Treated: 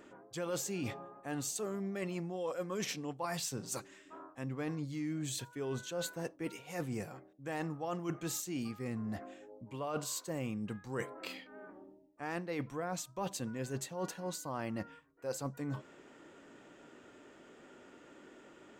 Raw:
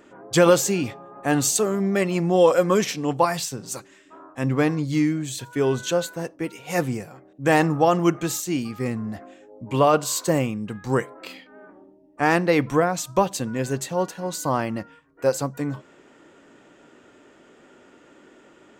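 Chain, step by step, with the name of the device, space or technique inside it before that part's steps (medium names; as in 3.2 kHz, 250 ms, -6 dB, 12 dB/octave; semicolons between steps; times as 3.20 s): compression on the reversed sound (reverse; compression 12:1, threshold -30 dBFS, peak gain reduction 19.5 dB; reverse); trim -5 dB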